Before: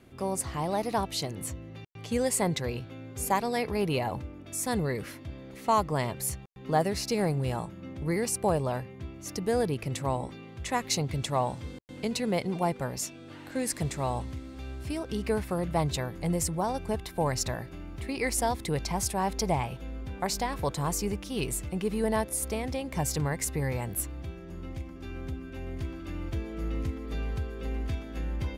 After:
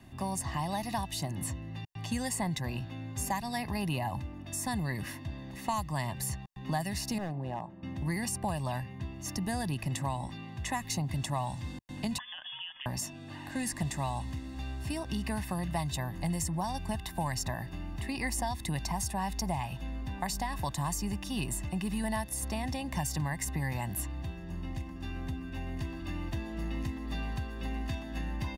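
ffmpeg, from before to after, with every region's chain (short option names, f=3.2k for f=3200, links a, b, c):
-filter_complex "[0:a]asettb=1/sr,asplit=3[a][b][c];[a]atrim=end=7.184[d];[b]atrim=start=7.18:end=7.83,asetpts=PTS-STARTPTS,afade=t=in:d=0.004:c=qsin,afade=t=out:st=0.646:d=0.004:c=qsin,bandpass=f=520:t=q:w=1,volume=27dB,asoftclip=hard,volume=-27dB[e];[c]atrim=start=7.826[f];[d][e]acrossfade=d=0.004:c1=hsin:c2=qsin[g];[g][f]acrossfade=d=0.004:c1=qsin:c2=hsin,asettb=1/sr,asplit=3[h][i][j];[h]atrim=end=12.184[k];[i]atrim=start=12.18:end=12.86,asetpts=PTS-STARTPTS,afade=t=in:d=0.004:c=qsin,afade=t=out:st=0.676:d=0.004:c=qsin,highpass=f=340:w=0.5412,highpass=f=340:w=1.3066,acompressor=threshold=-34dB:ratio=12:attack=3.2:release=140:knee=1:detection=peak,lowpass=f=3.1k:t=q:w=0.5098,lowpass=f=3.1k:t=q:w=0.6013,lowpass=f=3.1k:t=q:w=0.9,lowpass=f=3.1k:t=q:w=2.563,afreqshift=-3700[l];[j]atrim=start=12.856[m];[k][l]acrossfade=d=0.004:c1=hsin:c2=qsin[n];[n][m]acrossfade=d=0.004:c1=qsin:c2=hsin,aecho=1:1:1.1:0.85,acrossover=split=160|1800|7500[o][p][q][r];[o]acompressor=threshold=-37dB:ratio=4[s];[p]acompressor=threshold=-34dB:ratio=4[t];[q]acompressor=threshold=-41dB:ratio=4[u];[r]acompressor=threshold=-39dB:ratio=4[v];[s][t][u][v]amix=inputs=4:normalize=0"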